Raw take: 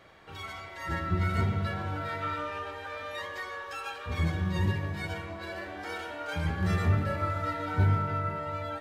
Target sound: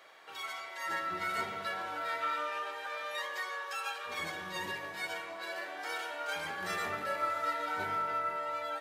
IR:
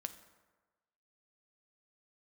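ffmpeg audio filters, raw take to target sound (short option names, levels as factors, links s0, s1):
-af "highpass=560,highshelf=f=5900:g=6"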